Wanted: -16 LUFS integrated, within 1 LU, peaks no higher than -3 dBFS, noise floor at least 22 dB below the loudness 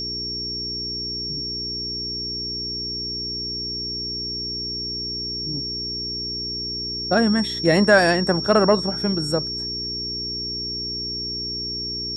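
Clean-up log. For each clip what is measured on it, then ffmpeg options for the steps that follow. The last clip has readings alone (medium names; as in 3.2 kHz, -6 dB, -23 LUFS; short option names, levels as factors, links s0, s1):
hum 60 Hz; highest harmonic 420 Hz; hum level -35 dBFS; steady tone 5.5 kHz; tone level -26 dBFS; loudness -23.0 LUFS; peak level -3.5 dBFS; loudness target -16.0 LUFS
-> -af "bandreject=f=60:t=h:w=4,bandreject=f=120:t=h:w=4,bandreject=f=180:t=h:w=4,bandreject=f=240:t=h:w=4,bandreject=f=300:t=h:w=4,bandreject=f=360:t=h:w=4,bandreject=f=420:t=h:w=4"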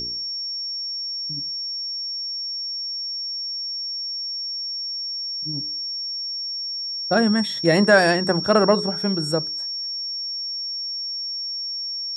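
hum not found; steady tone 5.5 kHz; tone level -26 dBFS
-> -af "bandreject=f=5500:w=30"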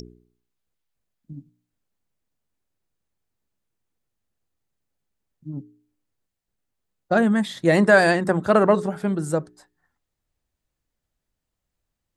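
steady tone not found; loudness -19.5 LUFS; peak level -4.0 dBFS; loudness target -16.0 LUFS
-> -af "volume=1.5,alimiter=limit=0.708:level=0:latency=1"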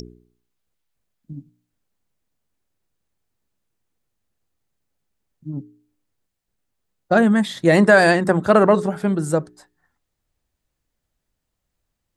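loudness -16.5 LUFS; peak level -3.0 dBFS; noise floor -79 dBFS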